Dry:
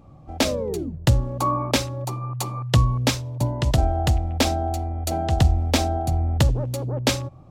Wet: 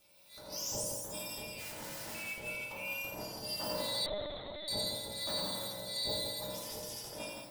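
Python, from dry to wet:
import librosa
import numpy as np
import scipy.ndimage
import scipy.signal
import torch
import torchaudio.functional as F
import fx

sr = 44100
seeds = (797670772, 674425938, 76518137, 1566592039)

y = fx.octave_mirror(x, sr, pivot_hz=1700.0)
y = fx.high_shelf(y, sr, hz=2000.0, db=-3.0)
y = fx.over_compress(y, sr, threshold_db=-33.0, ratio=-0.5)
y = fx.transient(y, sr, attack_db=-11, sustain_db=4)
y = fx.dispersion(y, sr, late='highs', ms=74.0, hz=1200.0, at=(6.29, 6.83))
y = y * np.sin(2.0 * np.pi * 180.0 * np.arange(len(y)) / sr)
y = fx.overflow_wrap(y, sr, gain_db=36.0, at=(1.57, 2.15))
y = fx.echo_multitap(y, sr, ms=(41, 85, 168, 256, 331, 337), db=(-16.5, -4.5, -4.5, -19.0, -11.5, -11.0))
y = fx.rev_fdn(y, sr, rt60_s=0.79, lf_ratio=1.0, hf_ratio=0.35, size_ms=10.0, drr_db=-4.5)
y = fx.lpc_vocoder(y, sr, seeds[0], excitation='pitch_kept', order=10, at=(4.06, 4.68))
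y = F.gain(torch.from_numpy(y), -7.5).numpy()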